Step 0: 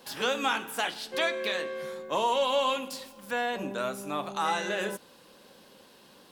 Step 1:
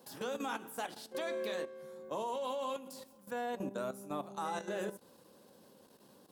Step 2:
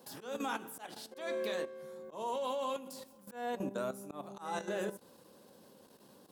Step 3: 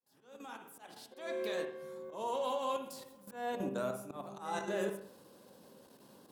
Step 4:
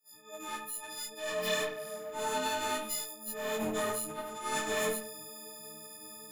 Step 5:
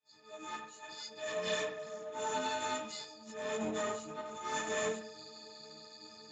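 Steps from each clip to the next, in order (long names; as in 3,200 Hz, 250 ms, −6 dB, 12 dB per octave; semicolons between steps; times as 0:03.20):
high-pass filter 64 Hz; parametric band 2,600 Hz −12 dB 2.3 octaves; output level in coarse steps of 12 dB; level −1 dB
volume swells 160 ms; level +1.5 dB
fade in at the beginning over 1.82 s; on a send at −6.5 dB: convolution reverb, pre-delay 48 ms
every partial snapped to a pitch grid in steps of 6 semitones; asymmetric clip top −43 dBFS; micro pitch shift up and down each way 20 cents; level +8 dB
level −3 dB; Speex 17 kbit/s 16,000 Hz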